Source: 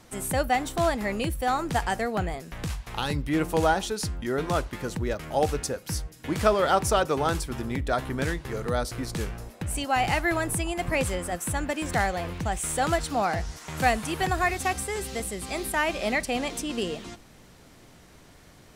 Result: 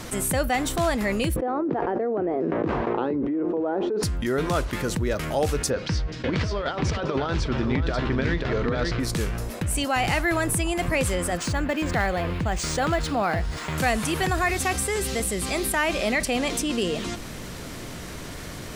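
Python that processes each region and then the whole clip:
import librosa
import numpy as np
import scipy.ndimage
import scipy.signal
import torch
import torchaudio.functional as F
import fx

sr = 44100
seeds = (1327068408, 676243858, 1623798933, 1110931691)

y = fx.chain(x, sr, fx.ladder_bandpass(hz=410.0, resonance_pct=45),
    fx.air_absorb(metres=55.0),
    fx.env_flatten(amount_pct=100), at=(1.36, 4.03))
y = fx.chain(y, sr, fx.lowpass(hz=4700.0, slope=24),
    fx.over_compress(threshold_db=-28.0, ratio=-0.5),
    fx.echo_single(ms=537, db=-6.5), at=(5.7, 9.0))
y = fx.chain(y, sr, fx.high_shelf(hz=7200.0, db=-7.5),
    fx.notch(hz=5900.0, q=5.7),
    fx.resample_linear(factor=3), at=(11.37, 13.78))
y = fx.peak_eq(y, sr, hz=800.0, db=-4.5, octaves=0.33)
y = fx.env_flatten(y, sr, amount_pct=50)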